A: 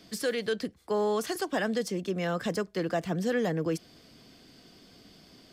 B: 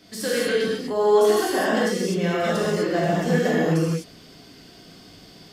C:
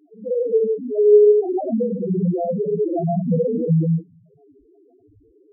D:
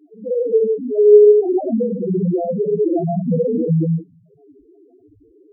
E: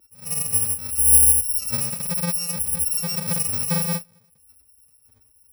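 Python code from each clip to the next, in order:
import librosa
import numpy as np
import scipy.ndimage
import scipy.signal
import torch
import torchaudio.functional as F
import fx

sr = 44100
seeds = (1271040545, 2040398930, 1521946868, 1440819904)

y1 = fx.rev_gated(x, sr, seeds[0], gate_ms=280, shape='flat', drr_db=-8.0)
y2 = fx.wiener(y1, sr, points=9)
y2 = fx.env_phaser(y2, sr, low_hz=170.0, high_hz=3000.0, full_db=-19.5)
y2 = fx.spec_topn(y2, sr, count=2)
y2 = y2 * librosa.db_to_amplitude(7.0)
y3 = fx.peak_eq(y2, sr, hz=320.0, db=7.0, octaves=0.99)
y3 = y3 * librosa.db_to_amplitude(-1.0)
y4 = fx.bit_reversed(y3, sr, seeds[1], block=128)
y4 = y4 * librosa.db_to_amplitude(-6.0)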